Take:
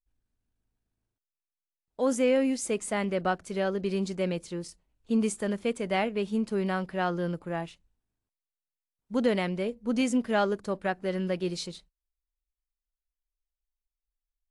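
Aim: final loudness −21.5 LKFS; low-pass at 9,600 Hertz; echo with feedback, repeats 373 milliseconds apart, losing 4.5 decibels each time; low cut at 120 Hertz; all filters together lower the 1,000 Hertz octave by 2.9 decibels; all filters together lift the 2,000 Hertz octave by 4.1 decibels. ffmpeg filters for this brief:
ffmpeg -i in.wav -af "highpass=120,lowpass=9600,equalizer=frequency=1000:width_type=o:gain=-6,equalizer=frequency=2000:width_type=o:gain=7,aecho=1:1:373|746|1119|1492|1865|2238|2611|2984|3357:0.596|0.357|0.214|0.129|0.0772|0.0463|0.0278|0.0167|0.01,volume=7dB" out.wav

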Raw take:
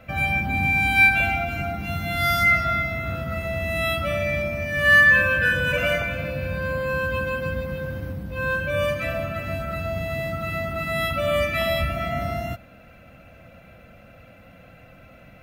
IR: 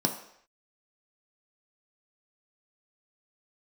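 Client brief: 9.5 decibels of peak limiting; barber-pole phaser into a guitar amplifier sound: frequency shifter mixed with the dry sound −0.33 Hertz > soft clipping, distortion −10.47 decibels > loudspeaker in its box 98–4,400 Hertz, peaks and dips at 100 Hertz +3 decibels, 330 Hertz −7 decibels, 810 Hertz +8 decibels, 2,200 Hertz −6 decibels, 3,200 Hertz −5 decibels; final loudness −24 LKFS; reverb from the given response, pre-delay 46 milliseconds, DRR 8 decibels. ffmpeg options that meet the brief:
-filter_complex "[0:a]alimiter=limit=-15.5dB:level=0:latency=1,asplit=2[link_01][link_02];[1:a]atrim=start_sample=2205,adelay=46[link_03];[link_02][link_03]afir=irnorm=-1:irlink=0,volume=-16dB[link_04];[link_01][link_04]amix=inputs=2:normalize=0,asplit=2[link_05][link_06];[link_06]afreqshift=-0.33[link_07];[link_05][link_07]amix=inputs=2:normalize=1,asoftclip=threshold=-27.5dB,highpass=98,equalizer=frequency=100:width_type=q:width=4:gain=3,equalizer=frequency=330:width_type=q:width=4:gain=-7,equalizer=frequency=810:width_type=q:width=4:gain=8,equalizer=frequency=2200:width_type=q:width=4:gain=-6,equalizer=frequency=3200:width_type=q:width=4:gain=-5,lowpass=frequency=4400:width=0.5412,lowpass=frequency=4400:width=1.3066,volume=8dB"

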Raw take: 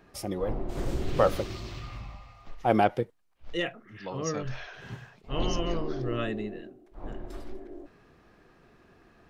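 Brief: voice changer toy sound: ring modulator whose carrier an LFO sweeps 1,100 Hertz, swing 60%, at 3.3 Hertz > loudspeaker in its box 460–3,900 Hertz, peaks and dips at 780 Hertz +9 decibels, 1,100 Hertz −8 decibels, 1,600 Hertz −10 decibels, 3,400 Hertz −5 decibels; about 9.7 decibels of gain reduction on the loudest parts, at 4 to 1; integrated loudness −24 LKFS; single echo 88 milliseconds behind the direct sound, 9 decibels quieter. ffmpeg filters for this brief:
ffmpeg -i in.wav -af "acompressor=threshold=-29dB:ratio=4,aecho=1:1:88:0.355,aeval=exprs='val(0)*sin(2*PI*1100*n/s+1100*0.6/3.3*sin(2*PI*3.3*n/s))':channel_layout=same,highpass=460,equalizer=frequency=780:width_type=q:width=4:gain=9,equalizer=frequency=1100:width_type=q:width=4:gain=-8,equalizer=frequency=1600:width_type=q:width=4:gain=-10,equalizer=frequency=3400:width_type=q:width=4:gain=-5,lowpass=frequency=3900:width=0.5412,lowpass=frequency=3900:width=1.3066,volume=15.5dB" out.wav

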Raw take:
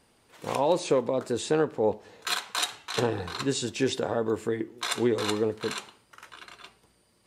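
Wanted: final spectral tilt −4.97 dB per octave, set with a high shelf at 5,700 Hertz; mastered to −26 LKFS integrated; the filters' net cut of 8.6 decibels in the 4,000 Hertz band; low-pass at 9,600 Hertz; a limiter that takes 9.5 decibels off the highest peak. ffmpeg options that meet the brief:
ffmpeg -i in.wav -af "lowpass=9600,equalizer=frequency=4000:width_type=o:gain=-7.5,highshelf=frequency=5700:gain=-7.5,volume=7dB,alimiter=limit=-14dB:level=0:latency=1" out.wav

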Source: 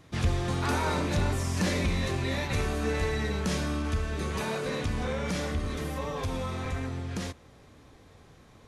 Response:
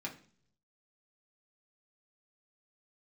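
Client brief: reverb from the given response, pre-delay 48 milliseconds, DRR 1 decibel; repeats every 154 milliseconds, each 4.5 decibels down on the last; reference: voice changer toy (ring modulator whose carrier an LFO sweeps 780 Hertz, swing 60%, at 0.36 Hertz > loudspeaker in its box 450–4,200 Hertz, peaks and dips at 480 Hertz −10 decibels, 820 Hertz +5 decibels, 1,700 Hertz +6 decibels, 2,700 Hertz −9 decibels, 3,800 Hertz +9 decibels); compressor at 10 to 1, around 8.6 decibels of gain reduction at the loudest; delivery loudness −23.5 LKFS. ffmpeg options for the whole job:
-filter_complex "[0:a]acompressor=threshold=-31dB:ratio=10,aecho=1:1:154|308|462|616|770|924|1078|1232|1386:0.596|0.357|0.214|0.129|0.0772|0.0463|0.0278|0.0167|0.01,asplit=2[link_01][link_02];[1:a]atrim=start_sample=2205,adelay=48[link_03];[link_02][link_03]afir=irnorm=-1:irlink=0,volume=-1.5dB[link_04];[link_01][link_04]amix=inputs=2:normalize=0,aeval=exprs='val(0)*sin(2*PI*780*n/s+780*0.6/0.36*sin(2*PI*0.36*n/s))':channel_layout=same,highpass=450,equalizer=frequency=480:width_type=q:width=4:gain=-10,equalizer=frequency=820:width_type=q:width=4:gain=5,equalizer=frequency=1700:width_type=q:width=4:gain=6,equalizer=frequency=2700:width_type=q:width=4:gain=-9,equalizer=frequency=3800:width_type=q:width=4:gain=9,lowpass=frequency=4200:width=0.5412,lowpass=frequency=4200:width=1.3066,volume=9.5dB"

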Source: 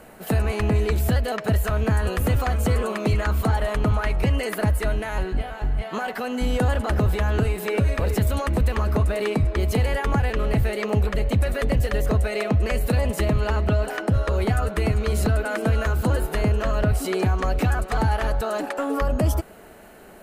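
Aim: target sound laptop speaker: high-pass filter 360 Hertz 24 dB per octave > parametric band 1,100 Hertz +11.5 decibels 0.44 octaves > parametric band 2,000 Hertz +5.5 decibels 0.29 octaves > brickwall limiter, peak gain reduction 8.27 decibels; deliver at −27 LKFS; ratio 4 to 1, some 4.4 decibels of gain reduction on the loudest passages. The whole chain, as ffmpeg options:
ffmpeg -i in.wav -af "acompressor=threshold=-21dB:ratio=4,highpass=frequency=360:width=0.5412,highpass=frequency=360:width=1.3066,equalizer=frequency=1100:width_type=o:width=0.44:gain=11.5,equalizer=frequency=2000:width_type=o:width=0.29:gain=5.5,volume=3dB,alimiter=limit=-15dB:level=0:latency=1" out.wav

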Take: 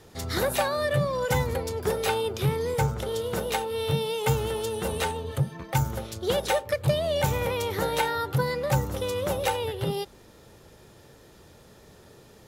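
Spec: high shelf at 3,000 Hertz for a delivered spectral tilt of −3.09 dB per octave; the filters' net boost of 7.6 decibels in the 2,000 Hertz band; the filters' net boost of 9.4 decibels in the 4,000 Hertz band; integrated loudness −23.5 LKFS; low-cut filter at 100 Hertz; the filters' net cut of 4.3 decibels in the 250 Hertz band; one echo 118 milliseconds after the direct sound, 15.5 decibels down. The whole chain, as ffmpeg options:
ffmpeg -i in.wav -af "highpass=100,equalizer=frequency=250:width_type=o:gain=-7.5,equalizer=frequency=2000:width_type=o:gain=6,highshelf=frequency=3000:gain=7,equalizer=frequency=4000:width_type=o:gain=4.5,aecho=1:1:118:0.168,volume=1dB" out.wav

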